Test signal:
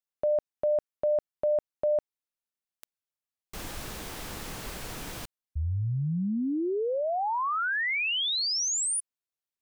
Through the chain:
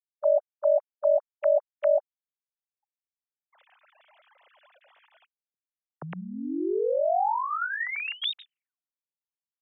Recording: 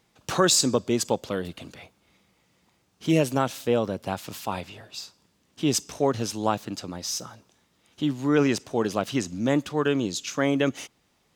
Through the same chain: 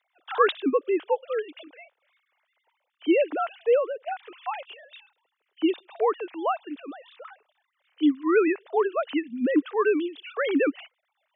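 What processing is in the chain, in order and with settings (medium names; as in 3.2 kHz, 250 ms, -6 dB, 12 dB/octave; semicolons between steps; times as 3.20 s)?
formants replaced by sine waves; high-pass 360 Hz 6 dB/octave; trim +2.5 dB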